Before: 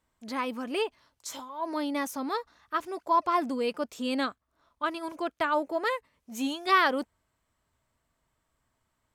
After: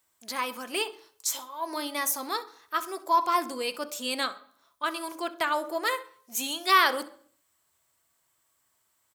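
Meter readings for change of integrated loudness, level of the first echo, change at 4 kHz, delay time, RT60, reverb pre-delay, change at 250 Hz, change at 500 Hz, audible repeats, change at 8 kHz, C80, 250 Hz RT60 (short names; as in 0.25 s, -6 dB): +1.5 dB, -19.5 dB, +6.0 dB, 65 ms, 0.55 s, 3 ms, -6.0 dB, -2.0 dB, 1, +11.5 dB, 19.5 dB, 0.60 s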